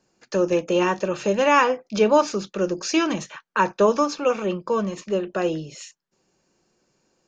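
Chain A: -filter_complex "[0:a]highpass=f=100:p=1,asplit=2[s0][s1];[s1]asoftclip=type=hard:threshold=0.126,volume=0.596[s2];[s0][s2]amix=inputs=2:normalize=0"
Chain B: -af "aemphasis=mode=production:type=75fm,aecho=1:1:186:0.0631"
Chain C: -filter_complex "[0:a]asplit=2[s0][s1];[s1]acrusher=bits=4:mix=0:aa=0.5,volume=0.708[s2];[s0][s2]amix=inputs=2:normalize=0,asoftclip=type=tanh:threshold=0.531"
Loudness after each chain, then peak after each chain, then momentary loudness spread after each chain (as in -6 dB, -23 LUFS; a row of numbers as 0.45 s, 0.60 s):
-19.5 LUFS, -22.0 LUFS, -19.0 LUFS; -5.0 dBFS, -5.0 dBFS, -6.5 dBFS; 9 LU, 9 LU, 8 LU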